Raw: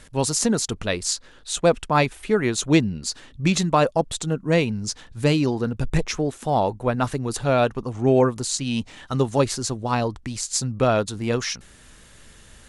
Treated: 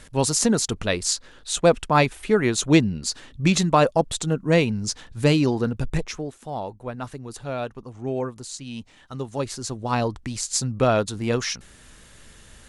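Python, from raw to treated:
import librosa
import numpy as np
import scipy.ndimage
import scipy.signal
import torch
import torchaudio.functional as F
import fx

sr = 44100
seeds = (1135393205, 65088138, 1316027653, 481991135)

y = fx.gain(x, sr, db=fx.line((5.66, 1.0), (6.42, -10.0), (9.22, -10.0), (10.0, 0.0)))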